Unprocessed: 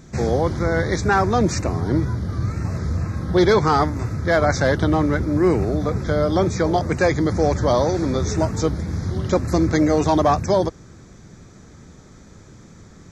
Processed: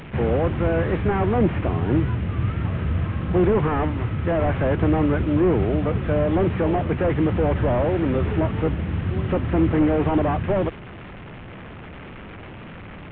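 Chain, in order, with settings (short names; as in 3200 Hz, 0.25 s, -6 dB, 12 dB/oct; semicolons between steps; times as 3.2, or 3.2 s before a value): delta modulation 16 kbps, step -32 dBFS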